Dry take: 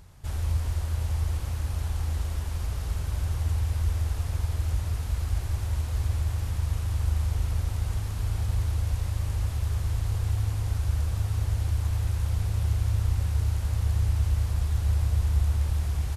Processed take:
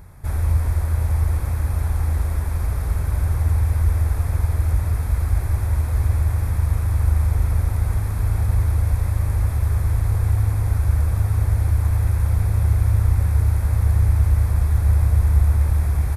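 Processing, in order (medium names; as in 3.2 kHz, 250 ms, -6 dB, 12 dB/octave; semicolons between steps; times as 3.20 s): high-order bell 4.7 kHz -9.5 dB; band-stop 2.9 kHz, Q 6.1; trim +8 dB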